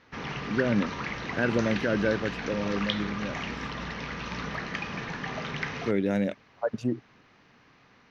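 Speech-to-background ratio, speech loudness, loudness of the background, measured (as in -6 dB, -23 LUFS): 4.0 dB, -30.0 LUFS, -34.0 LUFS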